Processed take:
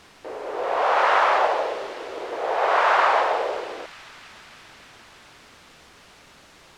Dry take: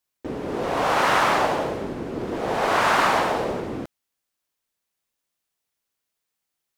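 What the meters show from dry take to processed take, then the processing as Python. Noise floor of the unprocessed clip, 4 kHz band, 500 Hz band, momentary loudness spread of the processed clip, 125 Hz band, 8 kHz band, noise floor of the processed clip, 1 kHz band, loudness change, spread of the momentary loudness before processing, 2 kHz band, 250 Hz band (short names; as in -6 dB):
-82 dBFS, -2.5 dB, +1.0 dB, 17 LU, under -20 dB, n/a, -51 dBFS, +1.5 dB, +1.0 dB, 14 LU, 0.0 dB, -13.0 dB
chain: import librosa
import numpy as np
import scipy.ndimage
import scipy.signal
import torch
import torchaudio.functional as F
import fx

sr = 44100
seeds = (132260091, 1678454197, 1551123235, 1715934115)

p1 = scipy.signal.sosfilt(scipy.signal.cheby2(4, 50, 180.0, 'highpass', fs=sr, output='sos'), x)
p2 = fx.quant_dither(p1, sr, seeds[0], bits=6, dither='triangular')
p3 = p1 + (p2 * 10.0 ** (-5.0 / 20.0))
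p4 = fx.spacing_loss(p3, sr, db_at_10k=22)
y = fx.echo_wet_highpass(p4, sr, ms=298, feedback_pct=77, hz=3300.0, wet_db=-8.0)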